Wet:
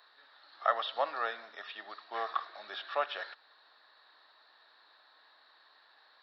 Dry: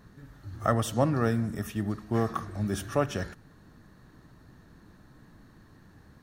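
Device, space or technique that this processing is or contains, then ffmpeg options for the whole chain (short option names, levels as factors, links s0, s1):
musical greeting card: -filter_complex "[0:a]aresample=11025,aresample=44100,highpass=f=670:w=0.5412,highpass=f=670:w=1.3066,equalizer=f=3800:t=o:w=0.4:g=12,acrossover=split=3600[s0][s1];[s1]acompressor=threshold=0.00158:ratio=4:attack=1:release=60[s2];[s0][s2]amix=inputs=2:normalize=0"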